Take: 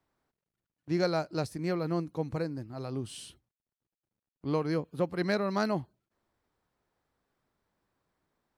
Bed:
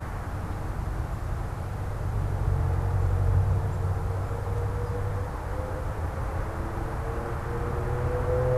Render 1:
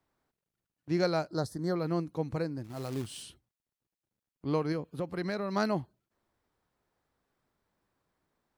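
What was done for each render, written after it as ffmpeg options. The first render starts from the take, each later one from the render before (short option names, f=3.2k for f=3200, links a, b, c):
-filter_complex "[0:a]asettb=1/sr,asplit=3[a][b][c];[a]atrim=end=1.284[d];[b]atrim=start=1.28:end=1.76,asetpts=PTS-STARTPTS,afade=t=in:d=0.004:c=qsin,afade=t=out:st=0.476:d=0.004:c=qsin,asuperstop=centerf=2500:order=4:qfactor=1.4[e];[c]atrim=start=1.756[f];[d][e]acrossfade=d=0.004:c1=hsin:c2=qsin[g];[g][f]acrossfade=d=0.004:c1=qsin:c2=hsin,asettb=1/sr,asplit=3[h][i][j];[h]atrim=end=2.644[k];[i]atrim=start=2.64:end=3.23,asetpts=PTS-STARTPTS,afade=t=in:d=0.004:c=qsin,afade=t=out:st=0.586:d=0.004:c=qsin,acrusher=bits=3:mode=log:mix=0:aa=0.000001[l];[j]atrim=start=3.226[m];[k][l]acrossfade=d=0.004:c1=hsin:c2=qsin[n];[n][m]acrossfade=d=0.004:c1=qsin:c2=hsin,asettb=1/sr,asplit=3[o][p][q];[o]atrim=end=4.724[r];[p]atrim=start=4.72:end=5.56,asetpts=PTS-STARTPTS,afade=t=in:d=0.004:c=qsin,afade=t=out:st=0.836:d=0.004:c=qsin,acompressor=threshold=-30dB:ratio=3:attack=3.2:release=140:knee=1:detection=peak[s];[q]atrim=start=5.556[t];[r][s]acrossfade=d=0.004:c1=hsin:c2=qsin[u];[u][t]acrossfade=d=0.004:c1=qsin:c2=hsin"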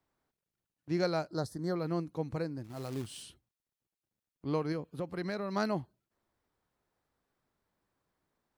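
-af "volume=-2.5dB"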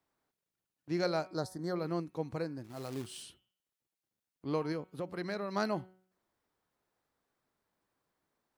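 -af "lowshelf=f=130:g=-8.5,bandreject=f=186.1:t=h:w=4,bandreject=f=372.2:t=h:w=4,bandreject=f=558.3:t=h:w=4,bandreject=f=744.4:t=h:w=4,bandreject=f=930.5:t=h:w=4,bandreject=f=1.1166k:t=h:w=4,bandreject=f=1.3027k:t=h:w=4,bandreject=f=1.4888k:t=h:w=4,bandreject=f=1.6749k:t=h:w=4,bandreject=f=1.861k:t=h:w=4,bandreject=f=2.0471k:t=h:w=4,bandreject=f=2.2332k:t=h:w=4,bandreject=f=2.4193k:t=h:w=4,bandreject=f=2.6054k:t=h:w=4,bandreject=f=2.7915k:t=h:w=4,bandreject=f=2.9776k:t=h:w=4,bandreject=f=3.1637k:t=h:w=4,bandreject=f=3.3498k:t=h:w=4,bandreject=f=3.5359k:t=h:w=4"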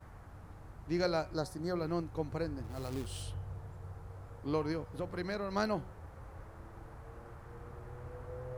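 -filter_complex "[1:a]volume=-19dB[a];[0:a][a]amix=inputs=2:normalize=0"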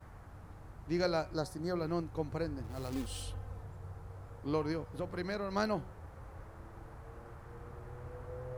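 -filter_complex "[0:a]asettb=1/sr,asplit=3[a][b][c];[a]atrim=end=2.924[d];[b]atrim=start=2.92:end=3.63,asetpts=PTS-STARTPTS,afade=t=in:d=0.004:c=qsin,afade=t=out:st=0.706:d=0.004:c=qsin,aecho=1:1:3.9:0.65,atrim=end_sample=31311[e];[c]atrim=start=3.626[f];[d][e]acrossfade=d=0.004:c1=hsin:c2=qsin[g];[g][f]acrossfade=d=0.004:c1=qsin:c2=hsin"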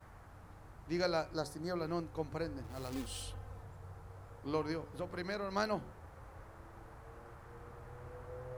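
-af "lowshelf=f=420:g=-4.5,bandreject=f=72.87:t=h:w=4,bandreject=f=145.74:t=h:w=4,bandreject=f=218.61:t=h:w=4,bandreject=f=291.48:t=h:w=4,bandreject=f=364.35:t=h:w=4,bandreject=f=437.22:t=h:w=4,bandreject=f=510.09:t=h:w=4"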